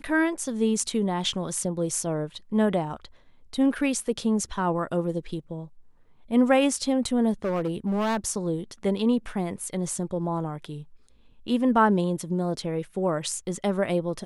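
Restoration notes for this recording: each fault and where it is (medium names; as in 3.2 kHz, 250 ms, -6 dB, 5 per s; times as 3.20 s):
7.44–8.17 s: clipped -22.5 dBFS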